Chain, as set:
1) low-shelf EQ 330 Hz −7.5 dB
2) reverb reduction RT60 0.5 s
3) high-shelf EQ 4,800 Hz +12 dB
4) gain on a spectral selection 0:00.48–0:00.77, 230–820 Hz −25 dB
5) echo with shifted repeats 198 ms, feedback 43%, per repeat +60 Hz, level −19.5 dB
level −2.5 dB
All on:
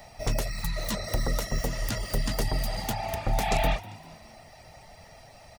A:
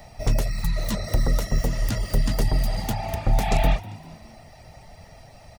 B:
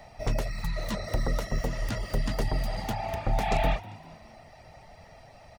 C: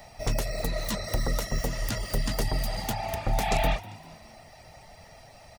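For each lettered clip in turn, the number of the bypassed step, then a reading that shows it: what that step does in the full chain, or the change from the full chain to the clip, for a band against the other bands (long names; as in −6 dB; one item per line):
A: 1, 125 Hz band +6.0 dB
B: 3, 8 kHz band −8.0 dB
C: 4, change in momentary loudness spread −3 LU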